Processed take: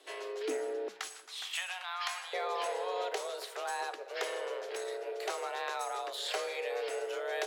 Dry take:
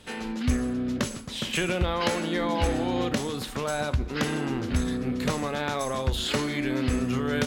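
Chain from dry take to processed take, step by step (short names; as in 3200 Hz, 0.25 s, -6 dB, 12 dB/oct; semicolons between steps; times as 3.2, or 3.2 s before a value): HPF 120 Hz 24 dB/oct, from 0.88 s 720 Hz, from 2.33 s 240 Hz; frequency shift +190 Hz; darkening echo 0.186 s, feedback 44%, level -18.5 dB; gain -7.5 dB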